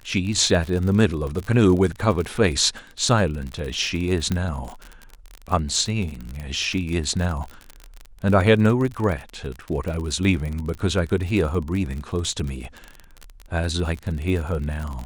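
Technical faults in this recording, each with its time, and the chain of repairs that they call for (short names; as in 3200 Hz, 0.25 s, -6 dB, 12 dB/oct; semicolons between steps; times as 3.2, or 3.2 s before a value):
crackle 46/s -27 dBFS
4.32 pop -11 dBFS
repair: de-click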